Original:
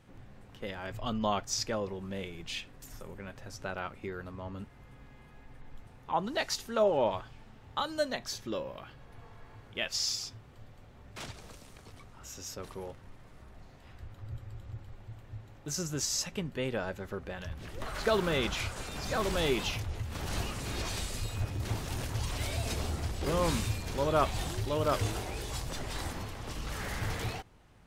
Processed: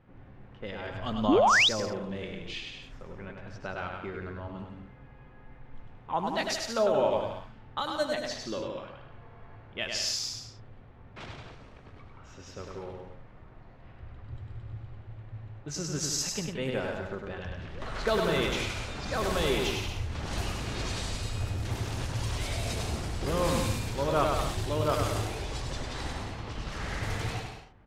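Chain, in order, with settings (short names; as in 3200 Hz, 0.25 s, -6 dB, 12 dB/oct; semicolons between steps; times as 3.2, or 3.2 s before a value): low-pass opened by the level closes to 1900 Hz, open at -28 dBFS; bouncing-ball echo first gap 0.1 s, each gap 0.75×, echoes 5; painted sound rise, 1.28–1.69, 230–4100 Hz -21 dBFS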